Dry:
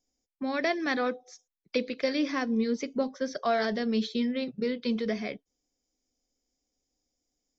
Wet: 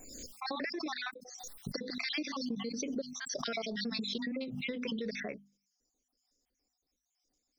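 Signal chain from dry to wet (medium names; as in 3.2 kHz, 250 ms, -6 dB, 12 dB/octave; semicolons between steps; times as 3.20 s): random holes in the spectrogram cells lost 58%; hum notches 50/100/150/200/250 Hz; compression 4:1, threshold -36 dBFS, peak gain reduction 11 dB; treble shelf 3.9 kHz +5 dB; swell ahead of each attack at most 33 dB/s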